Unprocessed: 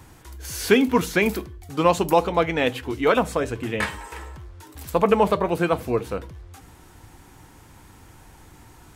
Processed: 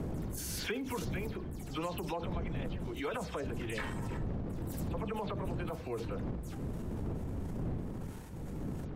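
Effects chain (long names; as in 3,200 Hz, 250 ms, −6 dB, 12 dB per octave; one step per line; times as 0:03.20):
every frequency bin delayed by itself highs early, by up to 103 ms
wind on the microphone 200 Hz −21 dBFS
transient designer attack −3 dB, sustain +7 dB
downward compressor 12 to 1, threshold −25 dBFS, peak gain reduction 17.5 dB
level −8 dB
MP3 80 kbit/s 48,000 Hz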